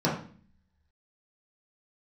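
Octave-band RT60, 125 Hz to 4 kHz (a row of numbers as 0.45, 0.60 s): 0.75, 0.80, 0.45, 0.40, 0.45, 0.45 s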